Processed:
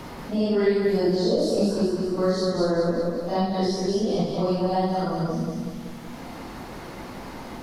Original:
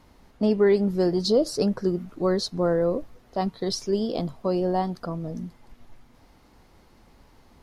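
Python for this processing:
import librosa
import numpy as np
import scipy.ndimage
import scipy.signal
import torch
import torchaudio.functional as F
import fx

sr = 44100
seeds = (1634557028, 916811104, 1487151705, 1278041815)

p1 = fx.phase_scramble(x, sr, seeds[0], window_ms=200)
p2 = p1 + fx.echo_feedback(p1, sr, ms=187, feedback_pct=37, wet_db=-4.0, dry=0)
y = fx.band_squash(p2, sr, depth_pct=70)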